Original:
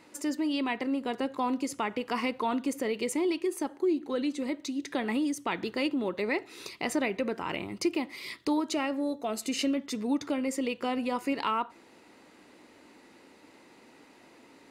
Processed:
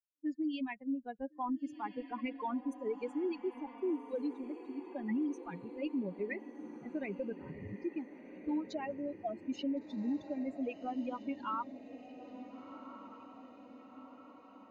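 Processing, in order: expander on every frequency bin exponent 3; RIAA curve playback; level-controlled noise filter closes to 410 Hz, open at -26.5 dBFS; bass shelf 110 Hz -10.5 dB; peak limiter -28 dBFS, peak gain reduction 10 dB; on a send: echo that smears into a reverb 1440 ms, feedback 58%, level -12 dB; on the sum: trim -1 dB

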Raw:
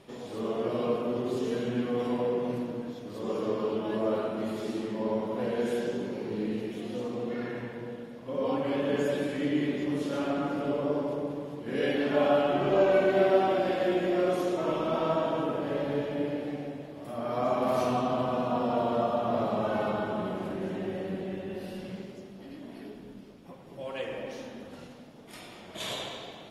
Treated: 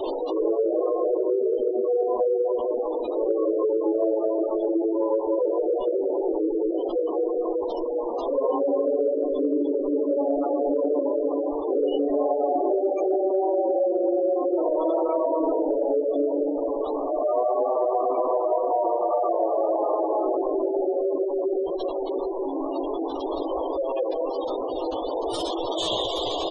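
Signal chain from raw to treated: one-bit delta coder 64 kbps, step -30 dBFS; Chebyshev high-pass 310 Hz, order 5; high-order bell 1.8 kHz -9 dB 1.1 oct; in parallel at -7.5 dB: sample-and-hold 15×; on the sum: added noise brown -56 dBFS; peak limiter -19 dBFS, peak gain reduction 9.5 dB; doubling 18 ms -4 dB; on a send: echo whose repeats swap between lows and highs 190 ms, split 840 Hz, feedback 83%, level -11 dB; on the sum: spectral gate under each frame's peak -15 dB strong; compression, threshold -28 dBFS, peak gain reduction 7 dB; trim +8.5 dB

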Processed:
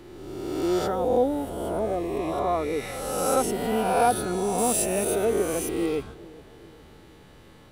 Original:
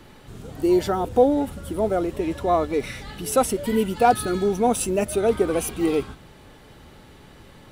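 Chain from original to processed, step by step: reverse spectral sustain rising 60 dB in 1.59 s; 1.79–2.33 s: Butterworth band-stop 1.4 kHz, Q 4.3; 4.58–5.25 s: treble shelf 10 kHz +11.5 dB; filtered feedback delay 413 ms, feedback 58%, low-pass 1.1 kHz, level -20 dB; trim -7 dB

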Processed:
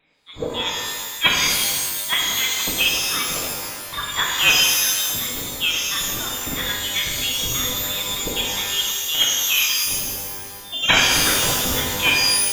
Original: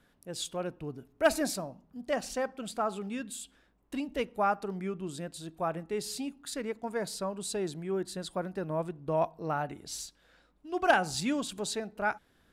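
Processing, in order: one-sided wavefolder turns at -21.5 dBFS; tilt shelf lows -9 dB, about 1.1 kHz; level rider gain up to 9.5 dB; frequency inversion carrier 3.9 kHz; time-frequency box 10.65–10.89 s, 770–2600 Hz -12 dB; pitch-shifted reverb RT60 1.6 s, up +12 st, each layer -2 dB, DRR -2.5 dB

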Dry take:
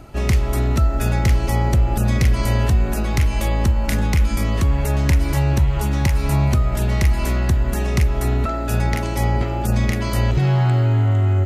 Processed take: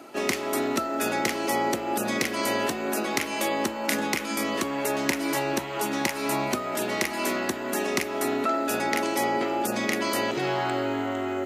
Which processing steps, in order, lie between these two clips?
Chebyshev high-pass 280 Hz, order 3; trim +1 dB

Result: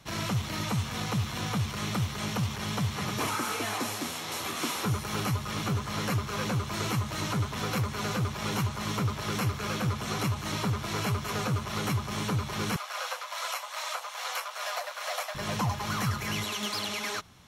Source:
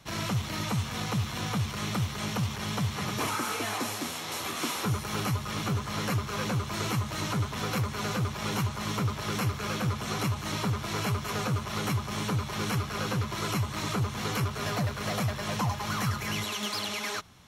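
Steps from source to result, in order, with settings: 12.76–15.35 s: steep high-pass 530 Hz 72 dB/octave

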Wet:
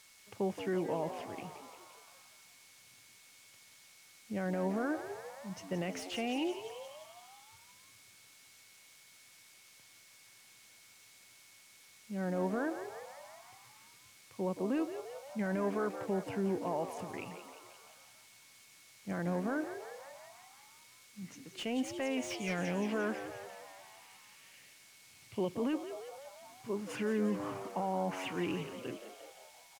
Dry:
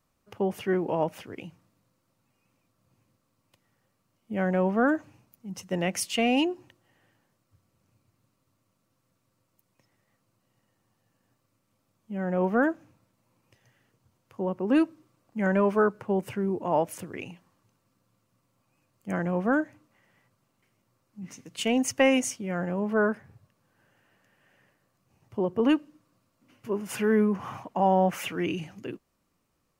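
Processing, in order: peak limiter -20.5 dBFS, peak gain reduction 11.5 dB; 22.30–25.56 s: high-order bell 3.4 kHz +16 dB; added noise blue -46 dBFS; distance through air 56 m; whistle 2.2 kHz -60 dBFS; frequency-shifting echo 174 ms, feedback 63%, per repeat +90 Hz, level -10.5 dB; slew-rate limiter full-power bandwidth 80 Hz; trim -5.5 dB

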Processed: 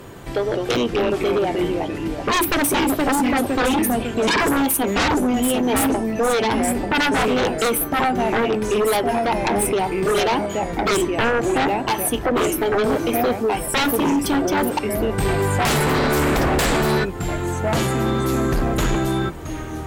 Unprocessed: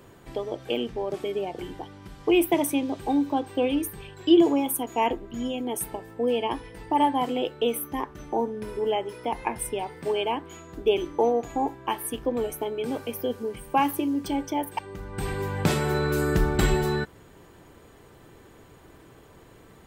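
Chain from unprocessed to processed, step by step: ever faster or slower copies 162 ms, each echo -2 st, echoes 3, each echo -6 dB; sine folder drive 16 dB, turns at -7 dBFS; trim -8 dB

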